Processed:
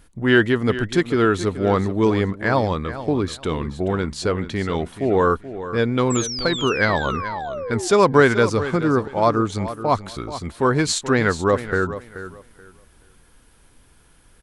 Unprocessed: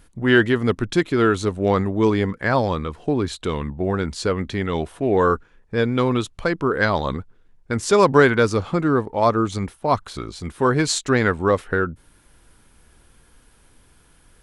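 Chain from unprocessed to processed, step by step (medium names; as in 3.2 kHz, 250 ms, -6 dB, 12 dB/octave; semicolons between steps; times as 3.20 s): painted sound fall, 6.10–7.88 s, 340–8000 Hz -29 dBFS; feedback delay 430 ms, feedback 22%, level -13 dB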